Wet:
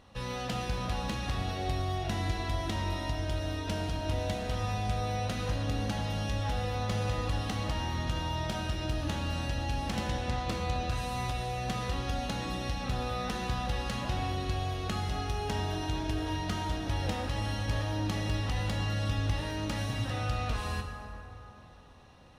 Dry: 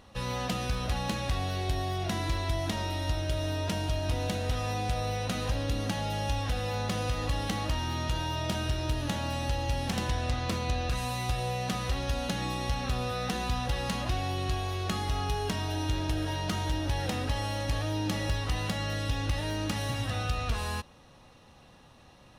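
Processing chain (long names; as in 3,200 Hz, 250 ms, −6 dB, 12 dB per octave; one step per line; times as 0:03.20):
high-shelf EQ 8,400 Hz −6 dB
on a send: convolution reverb RT60 3.2 s, pre-delay 3 ms, DRR 3.5 dB
on the sum: level −3 dB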